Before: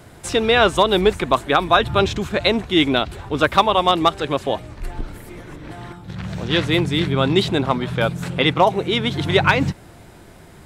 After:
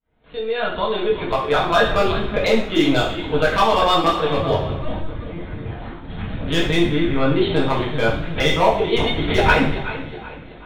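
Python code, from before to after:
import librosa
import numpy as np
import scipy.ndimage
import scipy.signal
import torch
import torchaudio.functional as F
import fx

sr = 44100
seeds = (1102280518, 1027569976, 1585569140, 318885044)

y = fx.fade_in_head(x, sr, length_s=1.85)
y = fx.echo_feedback(y, sr, ms=380, feedback_pct=40, wet_db=-13.0)
y = fx.lpc_vocoder(y, sr, seeds[0], excitation='pitch_kept', order=16)
y = fx.peak_eq(y, sr, hz=98.0, db=12.0, octaves=1.8, at=(4.37, 5.69))
y = np.clip(y, -10.0 ** (-8.0 / 20.0), 10.0 ** (-8.0 / 20.0))
y = fx.lowpass(y, sr, hz=2500.0, slope=12, at=(6.91, 7.41))
y = fx.rev_double_slope(y, sr, seeds[1], early_s=0.54, late_s=1.9, knee_db=-24, drr_db=-4.5)
y = F.gain(torch.from_numpy(y), -4.5).numpy()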